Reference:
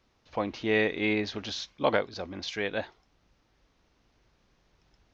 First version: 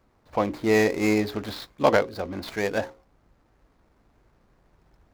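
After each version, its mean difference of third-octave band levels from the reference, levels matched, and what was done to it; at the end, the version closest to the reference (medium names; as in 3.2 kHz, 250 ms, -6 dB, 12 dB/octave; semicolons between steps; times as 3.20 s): 6.0 dB: median filter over 15 samples; hum notches 60/120/180/240/300/360/420/480/540 Hz; trim +7 dB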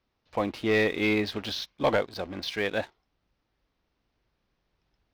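4.0 dB: low-pass 5.5 kHz 24 dB/octave; waveshaping leveller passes 2; trim -4.5 dB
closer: second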